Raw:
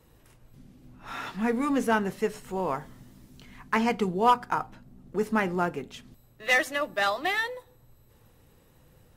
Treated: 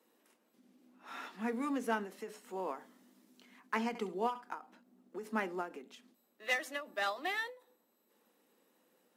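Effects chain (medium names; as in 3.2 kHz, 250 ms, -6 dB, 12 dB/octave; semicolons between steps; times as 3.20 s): steep high-pass 210 Hz 48 dB/octave; 3.88–4.44 s: flutter echo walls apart 11.9 m, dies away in 0.28 s; endings held to a fixed fall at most 160 dB/s; trim -9 dB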